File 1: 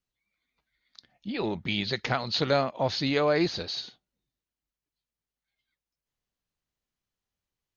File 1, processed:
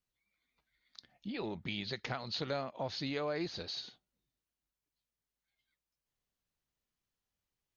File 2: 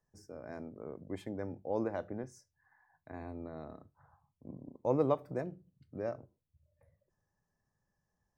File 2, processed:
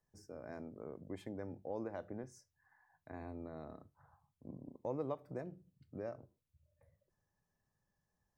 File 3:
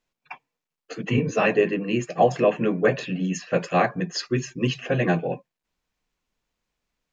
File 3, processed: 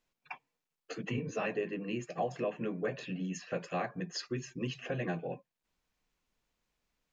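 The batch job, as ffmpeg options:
-af "acompressor=threshold=0.01:ratio=2,volume=0.794"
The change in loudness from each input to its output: -11.0 LU, -8.0 LU, -14.0 LU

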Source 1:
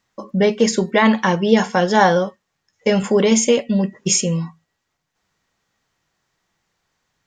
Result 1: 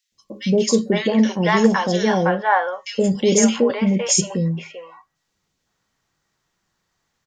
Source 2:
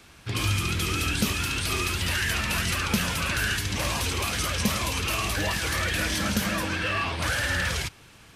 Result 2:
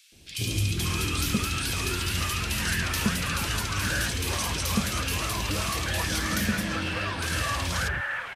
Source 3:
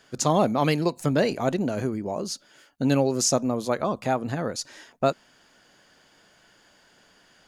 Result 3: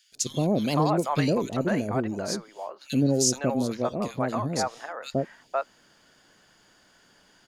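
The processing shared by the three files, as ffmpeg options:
-filter_complex "[0:a]acrossover=split=610|2400[s0][s1][s2];[s0]adelay=120[s3];[s1]adelay=510[s4];[s3][s4][s2]amix=inputs=3:normalize=0"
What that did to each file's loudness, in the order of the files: -1.5 LU, -1.0 LU, -1.5 LU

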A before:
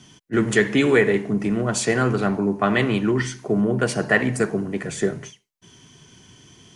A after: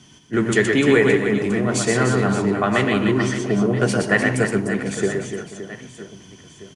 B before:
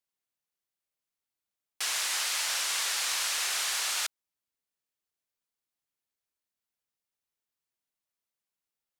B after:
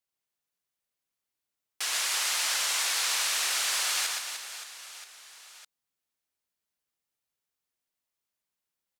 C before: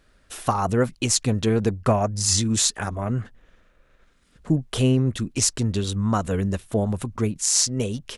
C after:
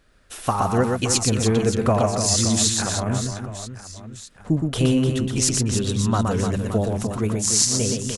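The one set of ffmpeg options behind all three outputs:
-af "aecho=1:1:120|300|570|975|1582:0.631|0.398|0.251|0.158|0.1"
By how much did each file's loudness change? +2.0 LU, +1.5 LU, +2.0 LU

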